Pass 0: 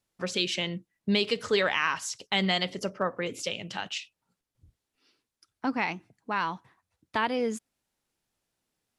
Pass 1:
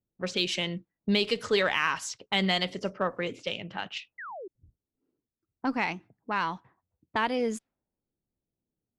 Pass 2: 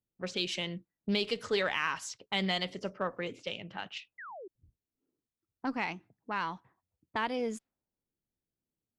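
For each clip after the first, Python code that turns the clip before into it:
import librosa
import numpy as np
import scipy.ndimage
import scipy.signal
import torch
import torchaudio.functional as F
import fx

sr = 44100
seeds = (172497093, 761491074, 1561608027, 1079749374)

y1 = fx.env_lowpass(x, sr, base_hz=370.0, full_db=-26.5)
y1 = fx.cheby_harmonics(y1, sr, harmonics=(8,), levels_db=(-38,), full_scale_db=-11.5)
y1 = fx.spec_paint(y1, sr, seeds[0], shape='fall', start_s=4.18, length_s=0.3, low_hz=340.0, high_hz=2100.0, level_db=-40.0)
y2 = fx.doppler_dist(y1, sr, depth_ms=0.1)
y2 = F.gain(torch.from_numpy(y2), -5.0).numpy()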